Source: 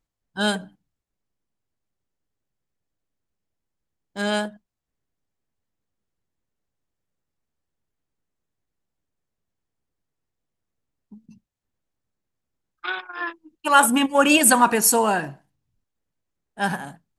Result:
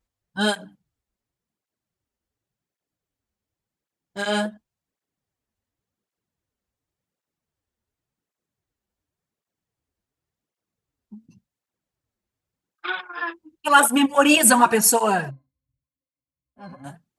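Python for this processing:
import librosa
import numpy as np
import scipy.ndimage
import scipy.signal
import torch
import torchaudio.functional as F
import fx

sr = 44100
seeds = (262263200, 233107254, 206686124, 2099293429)

y = fx.octave_resonator(x, sr, note='C', decay_s=0.11, at=(15.29, 16.84), fade=0.02)
y = fx.flanger_cancel(y, sr, hz=0.9, depth_ms=7.4)
y = F.gain(torch.from_numpy(y), 3.5).numpy()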